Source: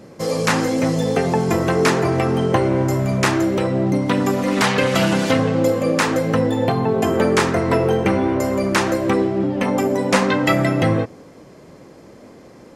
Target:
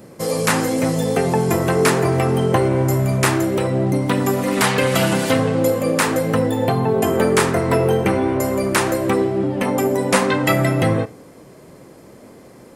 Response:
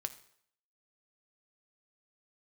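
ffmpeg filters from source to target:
-filter_complex "[0:a]aexciter=amount=3:drive=5.7:freq=8200,asplit=2[s0][s1];[1:a]atrim=start_sample=2205,atrim=end_sample=4410[s2];[s1][s2]afir=irnorm=-1:irlink=0,volume=1.41[s3];[s0][s3]amix=inputs=2:normalize=0,volume=0.447"

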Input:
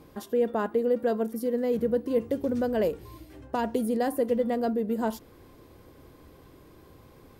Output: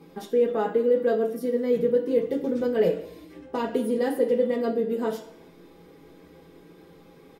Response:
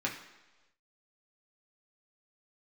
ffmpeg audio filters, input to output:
-filter_complex "[0:a]aecho=1:1:6.2:0.34[s0];[1:a]atrim=start_sample=2205,asetrate=66150,aresample=44100[s1];[s0][s1]afir=irnorm=-1:irlink=0"

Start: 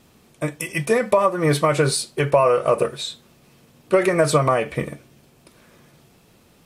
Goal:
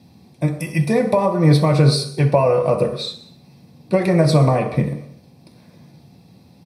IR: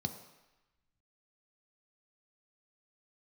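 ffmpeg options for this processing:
-filter_complex "[0:a]aecho=1:1:63|126|189|252|315:0.126|0.0705|0.0395|0.0221|0.0124[s0];[1:a]atrim=start_sample=2205,afade=t=out:st=0.31:d=0.01,atrim=end_sample=14112[s1];[s0][s1]afir=irnorm=-1:irlink=0,volume=0.75"

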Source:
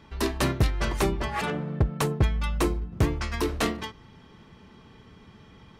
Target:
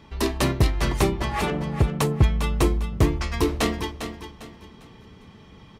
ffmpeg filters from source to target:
-filter_complex "[0:a]equalizer=f=1500:t=o:w=0.43:g=-4.5,asplit=2[s0][s1];[s1]aecho=0:1:401|802|1203|1604:0.335|0.107|0.0343|0.011[s2];[s0][s2]amix=inputs=2:normalize=0,volume=1.41"

